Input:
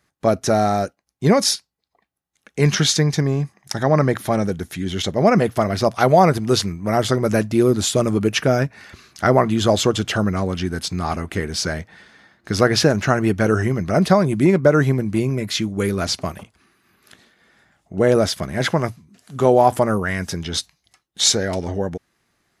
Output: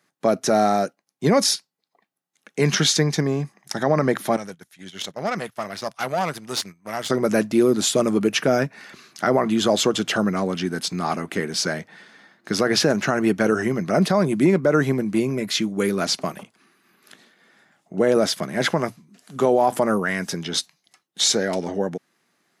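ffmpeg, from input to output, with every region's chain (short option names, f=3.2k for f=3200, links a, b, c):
-filter_complex "[0:a]asettb=1/sr,asplit=3[a][b][c];[a]atrim=end=4.364[d];[b]atrim=start=4.36:end=7.1,asetpts=PTS-STARTPTS,afade=t=in:d=0.004:c=qsin,afade=t=out:st=2.736:d=0.004:c=qsin,agate=range=-13dB:threshold=-26dB:ratio=16:release=100:detection=peak,equalizer=f=290:t=o:w=2.4:g=-13.5,aeval=exprs='(tanh(6.31*val(0)+0.65)-tanh(0.65))/6.31':c=same[e];[c]atrim=start=7.096[f];[d][e]acrossfade=d=0.004:c1=hsin:c2=qsin[g];[g][f]acrossfade=d=0.004:c1=qsin:c2=hsin,highpass=f=160:w=0.5412,highpass=f=160:w=1.3066,alimiter=level_in=7dB:limit=-1dB:release=50:level=0:latency=1,volume=-7dB"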